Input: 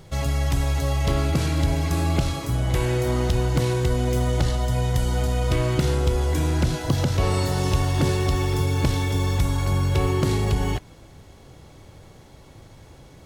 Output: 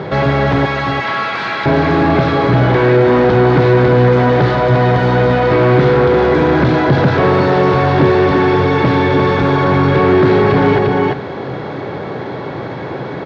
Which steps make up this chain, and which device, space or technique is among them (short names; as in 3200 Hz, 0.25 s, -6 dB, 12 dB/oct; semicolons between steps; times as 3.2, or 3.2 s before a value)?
0.65–1.66 Bessel high-pass 1300 Hz, order 6; echo 0.348 s -8.5 dB; overdrive pedal into a guitar cabinet (overdrive pedal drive 34 dB, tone 1100 Hz, clips at -8 dBFS; speaker cabinet 100–4000 Hz, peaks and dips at 130 Hz +7 dB, 190 Hz +4 dB, 270 Hz +3 dB, 410 Hz +6 dB, 1600 Hz +4 dB, 2900 Hz -6 dB); gain +3.5 dB